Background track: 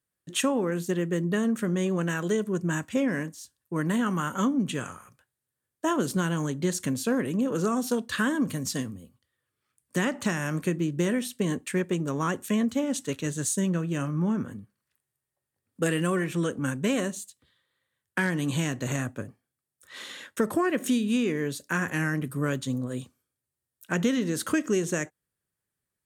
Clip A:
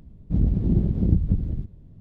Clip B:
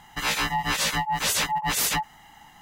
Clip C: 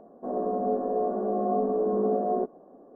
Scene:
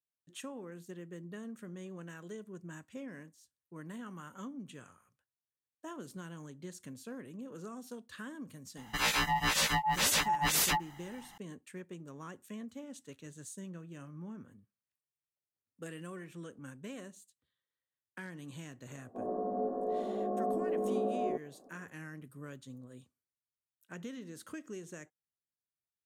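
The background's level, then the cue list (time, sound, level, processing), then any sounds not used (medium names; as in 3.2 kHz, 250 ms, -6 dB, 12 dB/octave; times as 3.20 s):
background track -19 dB
8.77 s: add B -4.5 dB
18.92 s: add C -7.5 dB
not used: A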